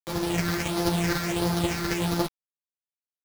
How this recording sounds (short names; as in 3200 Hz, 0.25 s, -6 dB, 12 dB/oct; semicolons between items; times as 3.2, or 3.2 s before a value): a buzz of ramps at a fixed pitch in blocks of 256 samples; phasing stages 6, 1.5 Hz, lowest notch 740–2500 Hz; a quantiser's noise floor 6-bit, dither none; a shimmering, thickened sound